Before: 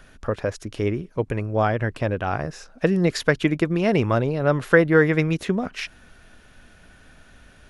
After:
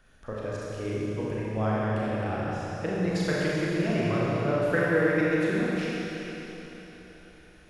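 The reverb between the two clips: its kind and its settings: Schroeder reverb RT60 3.9 s, combs from 29 ms, DRR -7 dB; gain -13 dB

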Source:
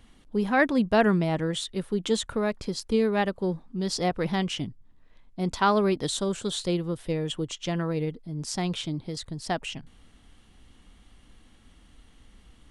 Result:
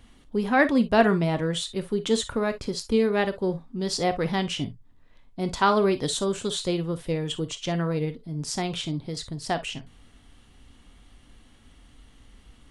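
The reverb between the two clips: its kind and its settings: non-linear reverb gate 80 ms flat, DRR 9.5 dB; gain +1.5 dB

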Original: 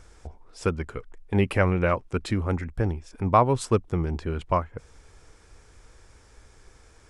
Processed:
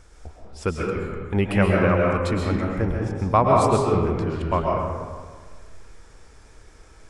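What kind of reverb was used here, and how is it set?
digital reverb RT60 1.6 s, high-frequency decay 0.55×, pre-delay 90 ms, DRR -2 dB

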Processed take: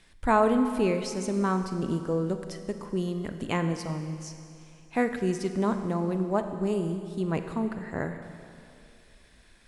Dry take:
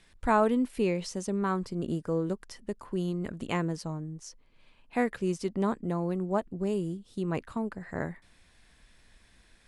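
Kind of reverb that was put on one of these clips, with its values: Schroeder reverb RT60 2.5 s, combs from 32 ms, DRR 7.5 dB; gain +2 dB

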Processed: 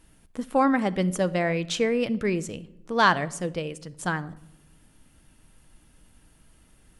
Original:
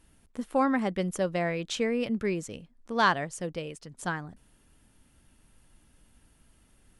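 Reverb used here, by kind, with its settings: shoebox room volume 2600 m³, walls furnished, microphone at 0.57 m; gain +4 dB

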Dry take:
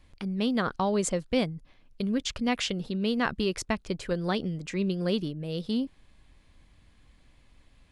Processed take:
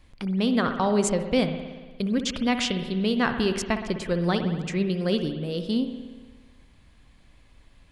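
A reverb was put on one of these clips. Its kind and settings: spring tank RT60 1.4 s, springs 58 ms, chirp 45 ms, DRR 7 dB; gain +3 dB

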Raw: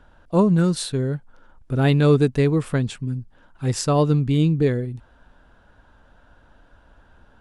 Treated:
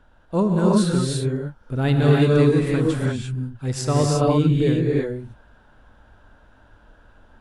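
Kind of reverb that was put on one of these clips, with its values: non-linear reverb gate 0.37 s rising, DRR -3 dB; gain -3.5 dB

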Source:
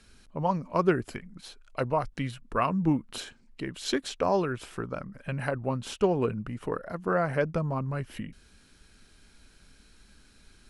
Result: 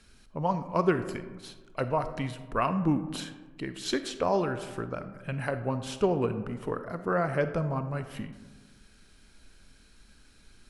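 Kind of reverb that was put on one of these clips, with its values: digital reverb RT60 1.4 s, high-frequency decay 0.35×, pre-delay 5 ms, DRR 10 dB; gain -1 dB

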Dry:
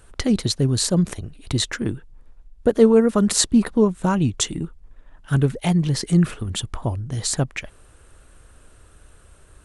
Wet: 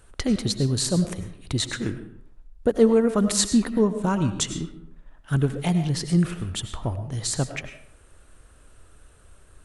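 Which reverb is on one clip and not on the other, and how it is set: digital reverb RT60 0.62 s, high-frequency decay 0.7×, pre-delay 60 ms, DRR 9 dB; gain -3.5 dB

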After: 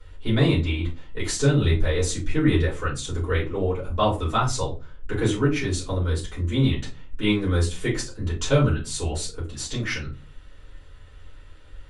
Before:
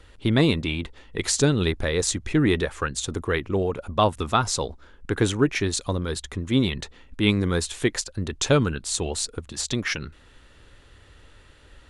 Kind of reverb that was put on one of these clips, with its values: shoebox room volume 120 m³, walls furnished, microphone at 4.6 m; gain -12.5 dB

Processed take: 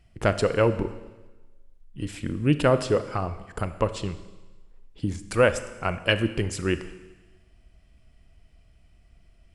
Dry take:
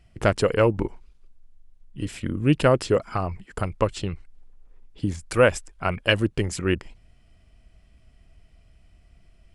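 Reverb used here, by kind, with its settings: Schroeder reverb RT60 1.2 s, combs from 27 ms, DRR 11.5 dB; gain -2 dB

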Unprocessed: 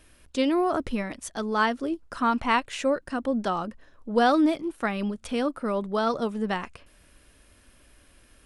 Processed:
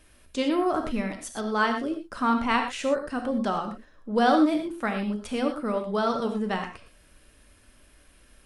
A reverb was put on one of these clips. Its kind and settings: non-linear reverb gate 0.14 s flat, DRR 4.5 dB; gain -1.5 dB

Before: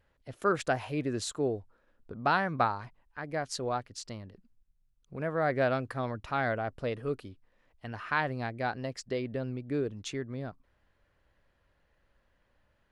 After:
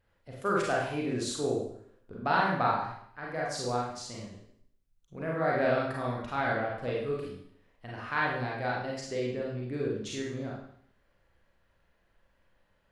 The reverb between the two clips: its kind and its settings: Schroeder reverb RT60 0.65 s, combs from 33 ms, DRR -4 dB; gain -4 dB

